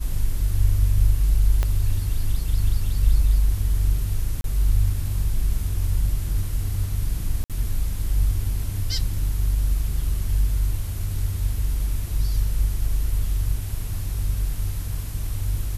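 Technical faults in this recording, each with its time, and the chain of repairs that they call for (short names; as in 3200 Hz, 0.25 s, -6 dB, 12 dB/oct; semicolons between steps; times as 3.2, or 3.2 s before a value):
1.63 pop -11 dBFS
4.41–4.44 gap 32 ms
7.44–7.5 gap 57 ms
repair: de-click; interpolate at 4.41, 32 ms; interpolate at 7.44, 57 ms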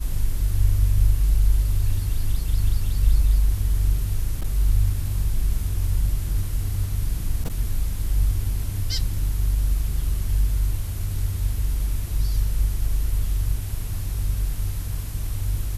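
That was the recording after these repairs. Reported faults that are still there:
1.63 pop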